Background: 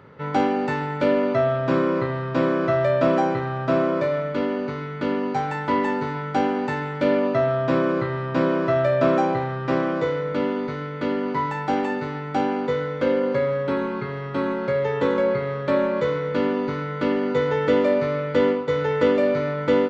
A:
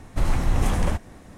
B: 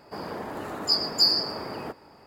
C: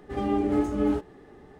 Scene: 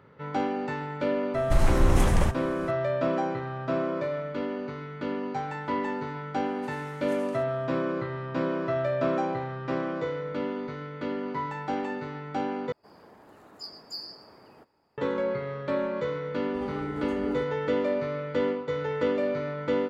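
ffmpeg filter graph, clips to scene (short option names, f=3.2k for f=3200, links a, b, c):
-filter_complex "[1:a]asplit=2[a][b];[0:a]volume=-7.5dB[c];[b]highpass=1.4k[d];[c]asplit=2[e][f];[e]atrim=end=12.724[g];[2:a]atrim=end=2.26,asetpts=PTS-STARTPTS,volume=-18dB[h];[f]atrim=start=14.976[i];[a]atrim=end=1.37,asetpts=PTS-STARTPTS,afade=t=in:d=0.004:c=hsin,afade=t=out:st=1.366:d=0.004:c=hsin,adelay=1340[j];[d]atrim=end=1.37,asetpts=PTS-STARTPTS,volume=-16.5dB,afade=t=in:d=0.004:c=hsin,afade=t=out:st=1.366:d=0.004:c=hsin,adelay=6460[k];[3:a]atrim=end=1.59,asetpts=PTS-STARTPTS,volume=-10dB,afade=t=in:d=0.004:c=hsin,afade=t=out:st=1.586:d=0.004:c=hsin,adelay=16440[l];[g][h]acrossfade=d=0.004:c1=hsin:c2=hsin[m];[m][i]acrossfade=d=0.004:c1=hsin:c2=hsin[n];[n][j][k][l]amix=inputs=4:normalize=0"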